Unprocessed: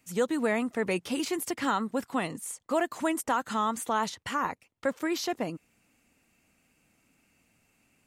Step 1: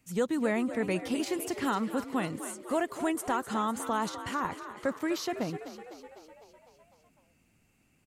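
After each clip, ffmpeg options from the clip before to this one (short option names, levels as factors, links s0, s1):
-filter_complex "[0:a]lowshelf=f=200:g=9.5,asplit=2[s0][s1];[s1]asplit=7[s2][s3][s4][s5][s6][s7][s8];[s2]adelay=252,afreqshift=50,volume=0.251[s9];[s3]adelay=504,afreqshift=100,volume=0.155[s10];[s4]adelay=756,afreqshift=150,volume=0.0966[s11];[s5]adelay=1008,afreqshift=200,volume=0.0596[s12];[s6]adelay=1260,afreqshift=250,volume=0.0372[s13];[s7]adelay=1512,afreqshift=300,volume=0.0229[s14];[s8]adelay=1764,afreqshift=350,volume=0.0143[s15];[s9][s10][s11][s12][s13][s14][s15]amix=inputs=7:normalize=0[s16];[s0][s16]amix=inputs=2:normalize=0,volume=0.668"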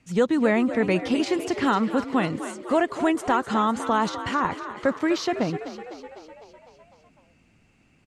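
-af "lowpass=5300,volume=2.51"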